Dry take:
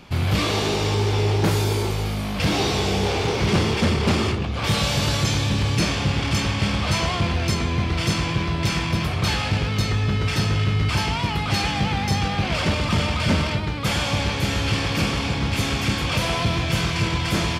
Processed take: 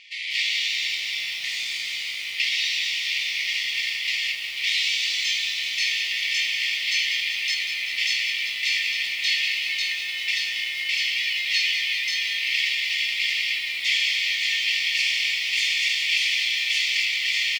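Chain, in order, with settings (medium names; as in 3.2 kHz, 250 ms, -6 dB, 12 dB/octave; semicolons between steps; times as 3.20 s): 14.92–17.05 s: treble shelf 7.3 kHz +8 dB; gain riding within 3 dB 0.5 s; brick-wall FIR high-pass 1.8 kHz; distance through air 130 m; doubling 16 ms -11 dB; bit-crushed delay 192 ms, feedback 80%, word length 8-bit, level -9.5 dB; trim +6.5 dB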